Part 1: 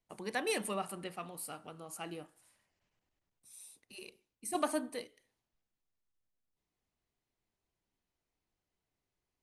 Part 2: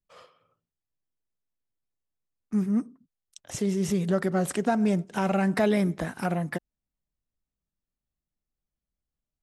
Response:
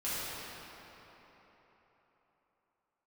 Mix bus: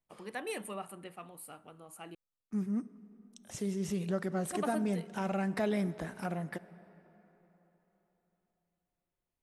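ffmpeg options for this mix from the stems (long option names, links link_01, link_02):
-filter_complex "[0:a]equalizer=frequency=5200:width=1.6:gain=-9.5,volume=-4dB,asplit=3[link_01][link_02][link_03];[link_01]atrim=end=2.15,asetpts=PTS-STARTPTS,afade=type=out:start_time=2.146:duration=0.004:curve=hsin[link_04];[link_02]atrim=start=2.15:end=2.96,asetpts=PTS-STARTPTS,volume=0[link_05];[link_03]atrim=start=2.96,asetpts=PTS-STARTPTS,afade=type=in:duration=0.004:curve=hsin[link_06];[link_04][link_05][link_06]concat=n=3:v=0:a=1[link_07];[1:a]volume=-9dB,asplit=2[link_08][link_09];[link_09]volume=-22.5dB[link_10];[2:a]atrim=start_sample=2205[link_11];[link_10][link_11]afir=irnorm=-1:irlink=0[link_12];[link_07][link_08][link_12]amix=inputs=3:normalize=0"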